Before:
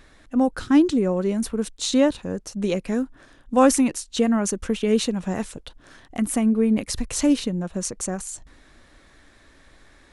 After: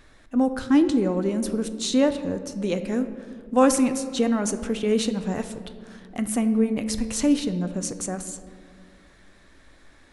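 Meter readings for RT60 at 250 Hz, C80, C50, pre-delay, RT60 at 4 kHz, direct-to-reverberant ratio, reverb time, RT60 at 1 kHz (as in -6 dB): 2.6 s, 12.5 dB, 11.0 dB, 7 ms, 1.0 s, 9.0 dB, 2.2 s, 1.9 s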